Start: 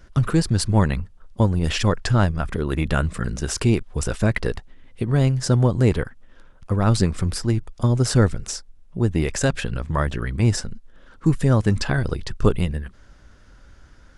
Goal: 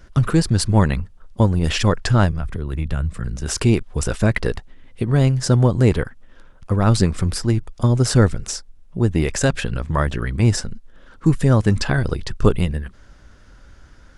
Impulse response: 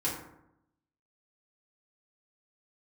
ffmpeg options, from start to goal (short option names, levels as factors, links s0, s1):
-filter_complex "[0:a]asettb=1/sr,asplit=3[s0][s1][s2];[s0]atrim=end=2.324[s3];[s1]atrim=start=2.32:end=3.46,asetpts=PTS-STARTPTS,afade=t=in:d=0.004:c=qsin,afade=t=out:st=1.136:d=0.004:c=qsin,acrossover=split=140[s4][s5];[s5]acompressor=threshold=0.0126:ratio=2.5[s6];[s4][s6]amix=inputs=2:normalize=0[s7];[s2]atrim=start=3.456[s8];[s3][s7]acrossfade=d=0.004:c1=hsin:c2=qsin[s9];[s9][s8]acrossfade=d=0.004:c1=qsin:c2=hsin,volume=1.33"